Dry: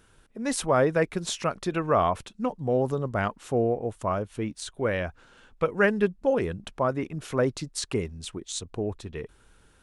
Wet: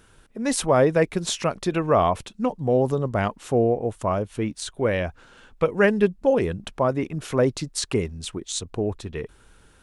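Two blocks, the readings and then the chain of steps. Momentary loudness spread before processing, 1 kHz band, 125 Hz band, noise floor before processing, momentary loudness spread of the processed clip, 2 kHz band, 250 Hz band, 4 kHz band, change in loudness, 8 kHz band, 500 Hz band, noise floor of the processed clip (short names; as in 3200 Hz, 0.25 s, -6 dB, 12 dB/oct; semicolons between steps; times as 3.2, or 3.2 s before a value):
11 LU, +2.5 dB, +4.5 dB, -60 dBFS, 10 LU, +1.5 dB, +4.5 dB, +4.5 dB, +4.0 dB, +4.5 dB, +4.5 dB, -55 dBFS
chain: dynamic EQ 1400 Hz, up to -5 dB, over -41 dBFS, Q 2; gain +4.5 dB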